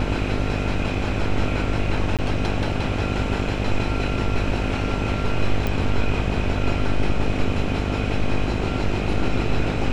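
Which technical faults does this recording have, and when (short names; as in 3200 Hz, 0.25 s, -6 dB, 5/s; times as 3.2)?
buzz 50 Hz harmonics 15 -26 dBFS
2.17–2.19 gap 17 ms
5.67 pop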